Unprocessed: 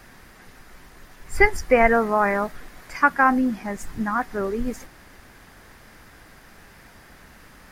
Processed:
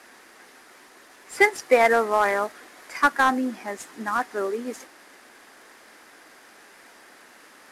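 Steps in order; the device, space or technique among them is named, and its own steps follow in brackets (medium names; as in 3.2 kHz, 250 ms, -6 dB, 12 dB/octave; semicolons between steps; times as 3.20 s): early wireless headset (high-pass 280 Hz 24 dB/octave; CVSD coder 64 kbps)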